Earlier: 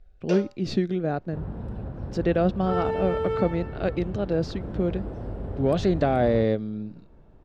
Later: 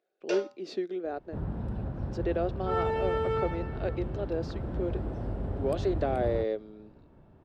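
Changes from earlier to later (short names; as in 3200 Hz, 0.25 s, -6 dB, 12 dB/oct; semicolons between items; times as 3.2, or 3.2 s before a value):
speech: add ladder high-pass 330 Hz, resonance 45%; master: add bell 470 Hz -3.5 dB 0.34 oct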